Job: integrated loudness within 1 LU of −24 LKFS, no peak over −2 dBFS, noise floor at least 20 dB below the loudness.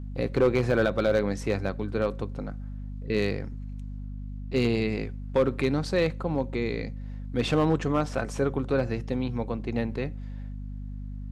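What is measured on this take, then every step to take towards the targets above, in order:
share of clipped samples 0.4%; peaks flattened at −15.0 dBFS; mains hum 50 Hz; hum harmonics up to 250 Hz; level of the hum −33 dBFS; integrated loudness −28.0 LKFS; sample peak −15.0 dBFS; target loudness −24.0 LKFS
→ clipped peaks rebuilt −15 dBFS
mains-hum notches 50/100/150/200/250 Hz
level +4 dB

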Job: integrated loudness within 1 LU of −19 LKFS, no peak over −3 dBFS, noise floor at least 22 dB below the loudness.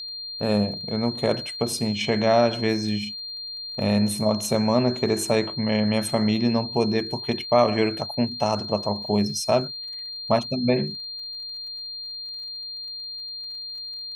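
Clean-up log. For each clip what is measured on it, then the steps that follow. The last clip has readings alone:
crackle rate 38 per second; interfering tone 4,200 Hz; level of the tone −32 dBFS; integrated loudness −24.5 LKFS; sample peak −6.5 dBFS; target loudness −19.0 LKFS
→ click removal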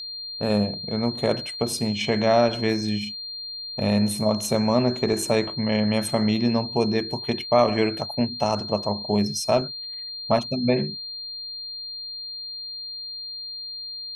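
crackle rate 0.071 per second; interfering tone 4,200 Hz; level of the tone −32 dBFS
→ notch filter 4,200 Hz, Q 30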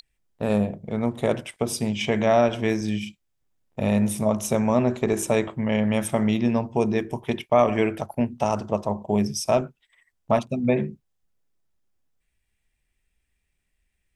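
interfering tone none found; integrated loudness −24.0 LKFS; sample peak −7.0 dBFS; target loudness −19.0 LKFS
→ level +5 dB
brickwall limiter −3 dBFS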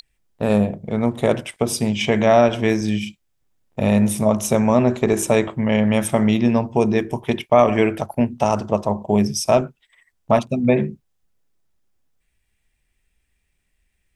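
integrated loudness −19.0 LKFS; sample peak −3.0 dBFS; background noise floor −71 dBFS

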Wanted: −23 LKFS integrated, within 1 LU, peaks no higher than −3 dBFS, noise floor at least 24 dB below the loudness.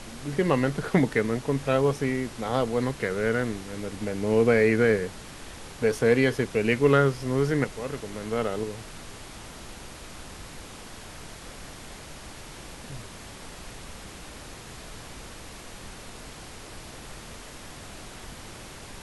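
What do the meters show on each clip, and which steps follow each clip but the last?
background noise floor −43 dBFS; target noise floor −50 dBFS; integrated loudness −25.5 LKFS; sample peak −7.0 dBFS; target loudness −23.0 LKFS
→ noise reduction from a noise print 7 dB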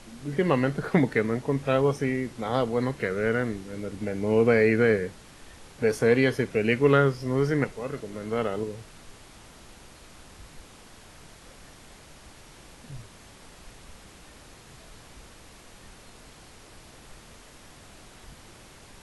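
background noise floor −50 dBFS; integrated loudness −25.5 LKFS; sample peak −7.5 dBFS; target loudness −23.0 LKFS
→ level +2.5 dB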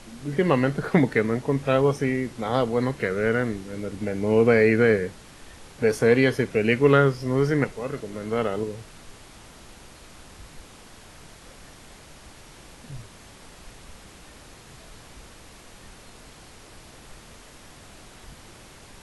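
integrated loudness −23.0 LKFS; sample peak −5.0 dBFS; background noise floor −48 dBFS

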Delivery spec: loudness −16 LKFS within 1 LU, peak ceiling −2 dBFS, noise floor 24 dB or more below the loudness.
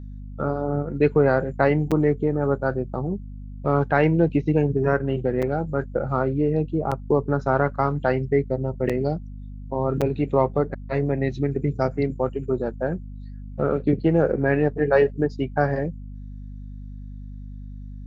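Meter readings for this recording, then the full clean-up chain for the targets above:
number of dropouts 5; longest dropout 6.3 ms; mains hum 50 Hz; hum harmonics up to 250 Hz; level of the hum −34 dBFS; integrated loudness −23.5 LKFS; sample peak −5.0 dBFS; target loudness −16.0 LKFS
→ repair the gap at 0:01.91/0:05.42/0:06.91/0:08.89/0:10.01, 6.3 ms
mains-hum notches 50/100/150/200/250 Hz
level +7.5 dB
brickwall limiter −2 dBFS

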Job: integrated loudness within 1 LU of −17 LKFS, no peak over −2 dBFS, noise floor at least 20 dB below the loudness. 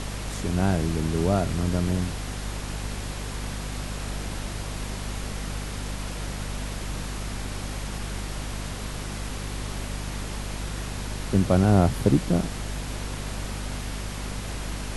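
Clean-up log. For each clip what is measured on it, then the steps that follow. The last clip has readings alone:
mains hum 50 Hz; hum harmonics up to 250 Hz; level of the hum −31 dBFS; background noise floor −34 dBFS; target noise floor −49 dBFS; integrated loudness −29.0 LKFS; sample peak −5.5 dBFS; target loudness −17.0 LKFS
→ mains-hum notches 50/100/150/200/250 Hz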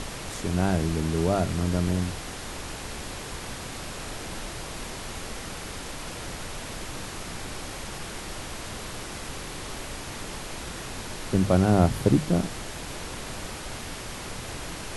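mains hum none found; background noise floor −37 dBFS; target noise floor −50 dBFS
→ noise reduction from a noise print 13 dB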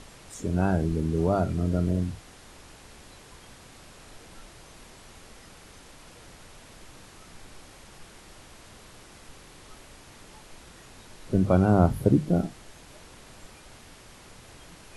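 background noise floor −50 dBFS; integrated loudness −25.0 LKFS; sample peak −6.0 dBFS; target loudness −17.0 LKFS
→ level +8 dB
brickwall limiter −2 dBFS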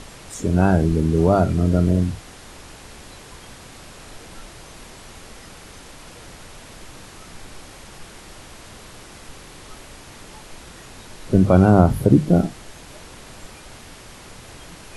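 integrated loudness −17.5 LKFS; sample peak −2.0 dBFS; background noise floor −42 dBFS

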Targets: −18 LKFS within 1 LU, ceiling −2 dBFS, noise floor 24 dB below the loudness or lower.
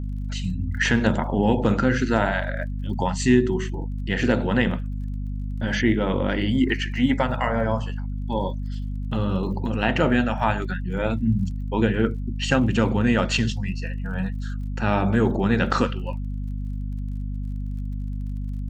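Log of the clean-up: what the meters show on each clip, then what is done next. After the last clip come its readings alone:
crackle rate 34 per second; mains hum 50 Hz; hum harmonics up to 250 Hz; level of the hum −26 dBFS; integrated loudness −24.0 LKFS; sample peak −4.5 dBFS; target loudness −18.0 LKFS
→ click removal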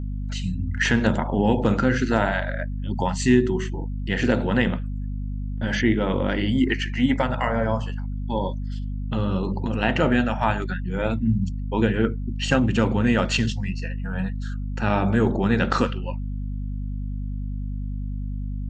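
crackle rate 0.11 per second; mains hum 50 Hz; hum harmonics up to 250 Hz; level of the hum −26 dBFS
→ mains-hum notches 50/100/150/200/250 Hz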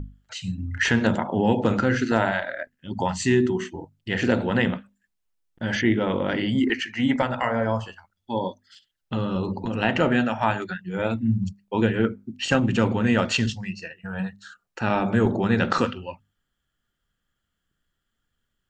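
mains hum none found; integrated loudness −24.5 LKFS; sample peak −6.0 dBFS; target loudness −18.0 LKFS
→ level +6.5 dB
brickwall limiter −2 dBFS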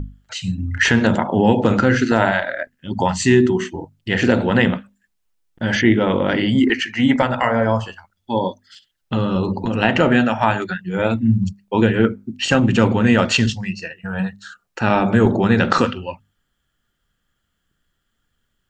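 integrated loudness −18.0 LKFS; sample peak −2.0 dBFS; background noise floor −72 dBFS

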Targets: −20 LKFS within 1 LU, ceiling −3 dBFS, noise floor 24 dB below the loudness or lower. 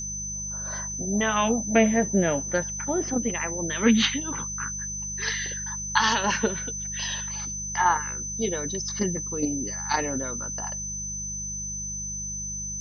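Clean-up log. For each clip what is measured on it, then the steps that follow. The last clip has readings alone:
mains hum 50 Hz; hum harmonics up to 200 Hz; level of the hum −37 dBFS; interfering tone 6,100 Hz; level of the tone −31 dBFS; integrated loudness −26.0 LKFS; sample peak −5.5 dBFS; target loudness −20.0 LKFS
→ hum removal 50 Hz, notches 4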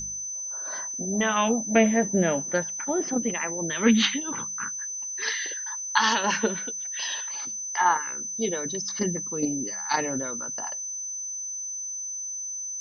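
mains hum none found; interfering tone 6,100 Hz; level of the tone −31 dBFS
→ notch filter 6,100 Hz, Q 30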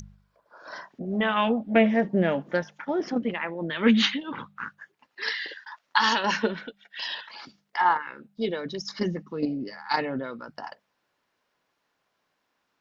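interfering tone none found; integrated loudness −26.5 LKFS; sample peak −5.5 dBFS; target loudness −20.0 LKFS
→ level +6.5 dB
brickwall limiter −3 dBFS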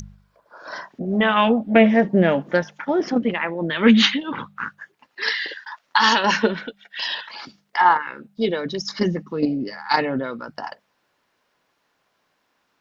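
integrated loudness −20.5 LKFS; sample peak −3.0 dBFS; background noise floor −70 dBFS

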